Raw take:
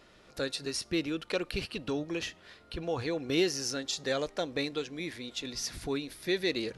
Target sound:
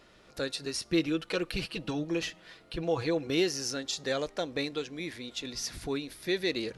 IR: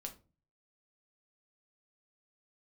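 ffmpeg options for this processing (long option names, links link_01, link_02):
-filter_complex "[0:a]asettb=1/sr,asplit=3[link_01][link_02][link_03];[link_01]atrim=end=0.894[link_04];[link_02]atrim=start=0.89:end=3.27,asetpts=PTS-STARTPTS,afade=type=in:duration=0.004:curve=qsin,afade=type=out:start_time=2.376:duration=0.004:curve=qsin,aecho=1:1:6.1:0.67,atrim=end_sample=104958[link_05];[link_03]atrim=start=3.266[link_06];[link_04][link_05]acrossfade=duration=0.004:curve1=hsin:curve2=qsin[link_07];[link_07][link_06]acrossfade=duration=0.004:curve1=qsin:curve2=hsin"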